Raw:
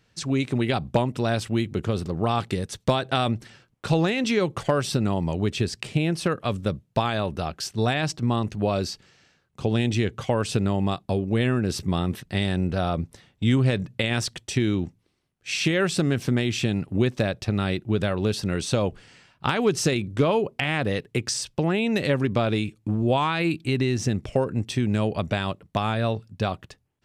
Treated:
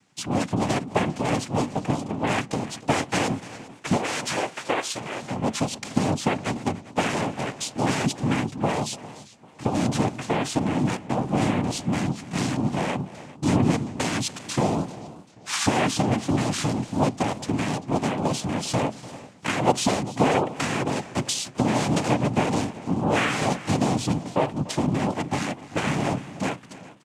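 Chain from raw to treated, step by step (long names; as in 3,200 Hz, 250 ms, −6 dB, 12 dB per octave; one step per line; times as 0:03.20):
0:03.96–0:05.30: high-pass filter 510 Hz 12 dB per octave
cochlear-implant simulation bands 4
single-tap delay 293 ms −18 dB
on a send at −19 dB: convolution reverb RT60 0.30 s, pre-delay 4 ms
on the sum: feedback echo with a swinging delay time 395 ms, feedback 37%, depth 118 cents, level −19 dB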